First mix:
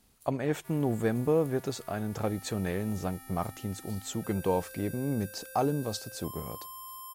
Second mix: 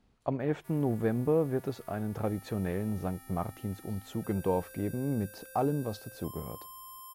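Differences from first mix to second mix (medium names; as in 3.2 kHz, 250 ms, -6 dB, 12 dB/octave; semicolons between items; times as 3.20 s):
speech: add tape spacing loss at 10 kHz 24 dB; background -3.5 dB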